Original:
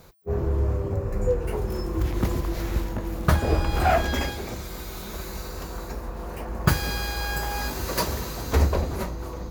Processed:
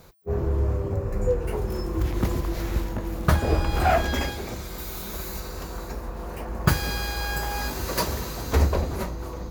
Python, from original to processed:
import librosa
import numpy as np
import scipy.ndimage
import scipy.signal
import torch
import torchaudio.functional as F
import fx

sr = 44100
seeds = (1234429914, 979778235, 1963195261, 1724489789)

y = fx.high_shelf(x, sr, hz=9300.0, db=7.5, at=(4.78, 5.4))